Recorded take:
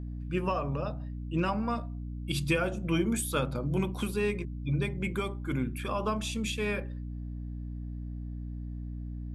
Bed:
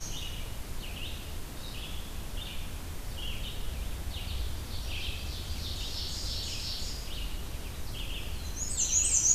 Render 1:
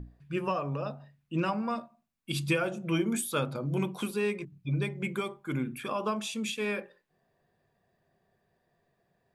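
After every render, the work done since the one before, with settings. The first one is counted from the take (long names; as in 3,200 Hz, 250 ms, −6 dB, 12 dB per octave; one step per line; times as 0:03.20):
mains-hum notches 60/120/180/240/300 Hz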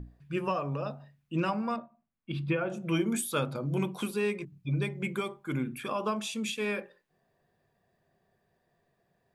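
0:01.76–0:02.70: high-frequency loss of the air 440 metres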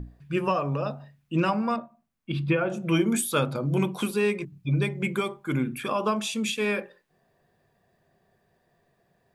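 level +5.5 dB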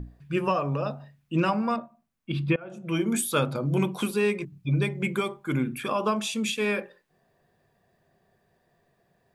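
0:02.56–0:03.23: fade in, from −23 dB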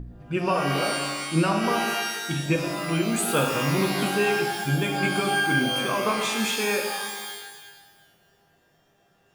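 reverb with rising layers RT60 1.3 s, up +12 semitones, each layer −2 dB, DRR 3 dB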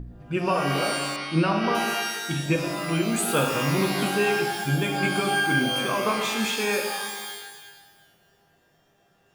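0:01.16–0:01.75: Savitzky-Golay smoothing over 15 samples
0:06.18–0:06.73: linearly interpolated sample-rate reduction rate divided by 2×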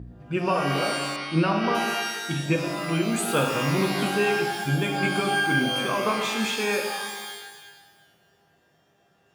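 high-pass filter 63 Hz
high-shelf EQ 9,400 Hz −6 dB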